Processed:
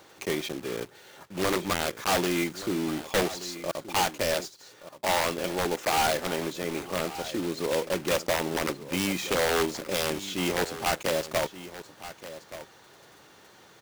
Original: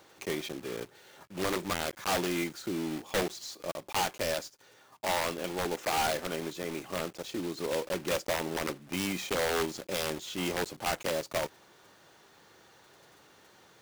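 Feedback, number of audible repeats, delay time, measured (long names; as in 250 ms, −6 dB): repeats not evenly spaced, 1, 1,176 ms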